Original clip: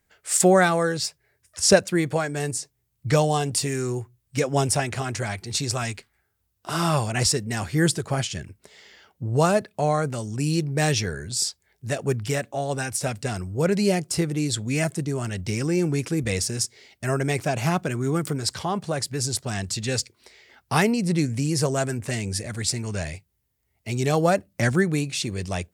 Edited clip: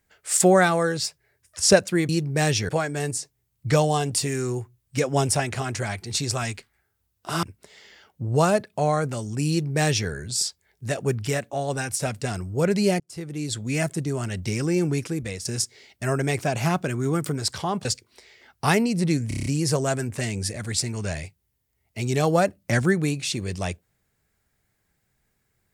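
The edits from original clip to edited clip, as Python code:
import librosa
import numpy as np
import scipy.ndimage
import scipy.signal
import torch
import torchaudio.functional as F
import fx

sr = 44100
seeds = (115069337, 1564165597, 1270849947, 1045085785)

y = fx.edit(x, sr, fx.cut(start_s=6.83, length_s=1.61),
    fx.duplicate(start_s=10.5, length_s=0.6, to_s=2.09),
    fx.fade_in_span(start_s=14.01, length_s=1.08, curve='qsin'),
    fx.fade_out_to(start_s=15.93, length_s=0.53, floor_db=-12.0),
    fx.cut(start_s=18.86, length_s=1.07),
    fx.stutter(start_s=21.36, slice_s=0.03, count=7), tone=tone)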